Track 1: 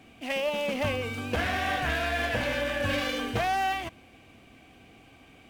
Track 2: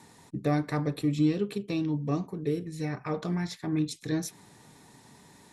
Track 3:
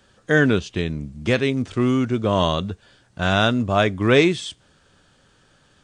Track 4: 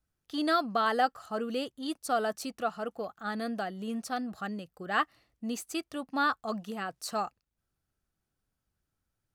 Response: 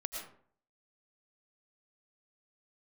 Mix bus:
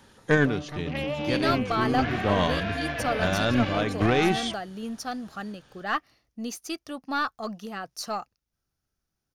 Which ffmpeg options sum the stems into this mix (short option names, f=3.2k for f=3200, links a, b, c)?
-filter_complex "[0:a]afwtdn=0.0112,lowpass=5.1k,adelay=650,volume=-1.5dB[a];[1:a]asoftclip=type=tanh:threshold=-25.5dB,volume=-7dB,asplit=3[b][c][d];[c]volume=-3.5dB[e];[2:a]volume=1dB[f];[3:a]equalizer=f=5.6k:t=o:w=0.5:g=7.5,adelay=950,volume=2dB[g];[d]apad=whole_len=257378[h];[f][h]sidechaincompress=threshold=-45dB:ratio=10:attack=44:release=215[i];[4:a]atrim=start_sample=2205[j];[e][j]afir=irnorm=-1:irlink=0[k];[a][b][i][g][k]amix=inputs=5:normalize=0,bandreject=f=7.8k:w=5.2,aeval=exprs='(tanh(3.16*val(0)+0.4)-tanh(0.4))/3.16':c=same"